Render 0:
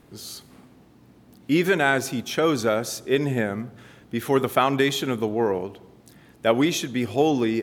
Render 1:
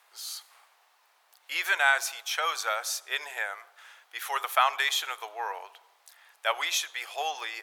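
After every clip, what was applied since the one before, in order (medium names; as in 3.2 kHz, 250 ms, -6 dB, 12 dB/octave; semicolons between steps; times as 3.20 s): inverse Chebyshev high-pass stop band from 240 Hz, stop band 60 dB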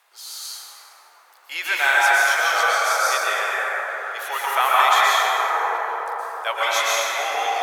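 plate-style reverb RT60 4.7 s, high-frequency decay 0.3×, pre-delay 105 ms, DRR -8.5 dB; trim +1.5 dB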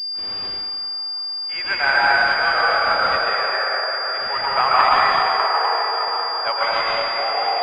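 delay with an opening low-pass 202 ms, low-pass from 400 Hz, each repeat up 1 oct, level -6 dB; class-D stage that switches slowly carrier 4.8 kHz; trim +1.5 dB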